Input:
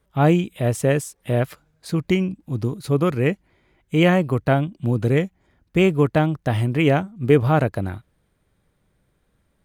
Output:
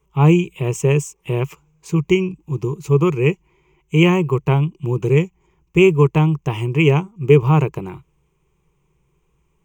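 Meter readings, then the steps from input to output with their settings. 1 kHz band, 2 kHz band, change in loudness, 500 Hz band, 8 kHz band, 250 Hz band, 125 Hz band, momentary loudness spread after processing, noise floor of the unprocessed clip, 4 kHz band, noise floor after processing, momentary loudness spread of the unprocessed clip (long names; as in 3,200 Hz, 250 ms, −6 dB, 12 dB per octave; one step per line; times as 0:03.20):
+0.5 dB, +2.0 dB, +3.5 dB, +3.0 dB, can't be measured, +2.5 dB, +4.5 dB, 11 LU, −68 dBFS, +3.0 dB, −65 dBFS, 10 LU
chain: EQ curve with evenly spaced ripples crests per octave 0.73, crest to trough 17 dB
level −1.5 dB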